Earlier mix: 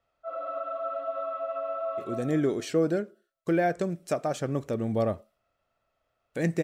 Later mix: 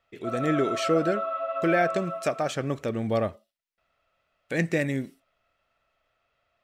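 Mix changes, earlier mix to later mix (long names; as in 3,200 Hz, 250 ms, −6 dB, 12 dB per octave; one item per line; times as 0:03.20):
speech: entry −1.85 s
master: add parametric band 2,500 Hz +8.5 dB 2 octaves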